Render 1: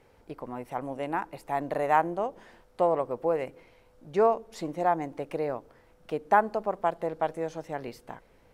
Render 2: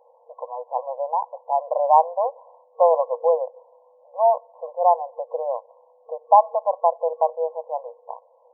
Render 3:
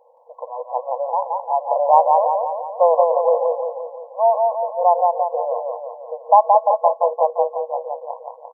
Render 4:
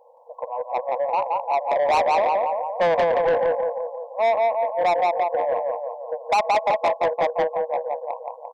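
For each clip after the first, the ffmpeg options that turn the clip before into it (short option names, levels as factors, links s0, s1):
-af "afftfilt=real='re*between(b*sr/4096,470,1100)':imag='im*between(b*sr/4096,470,1100)':win_size=4096:overlap=0.75,volume=2.66"
-af "aecho=1:1:173|346|519|692|865|1038|1211|1384:0.708|0.389|0.214|0.118|0.0648|0.0356|0.0196|0.0108,volume=1.19"
-af "asoftclip=type=tanh:threshold=0.141,volume=1.19"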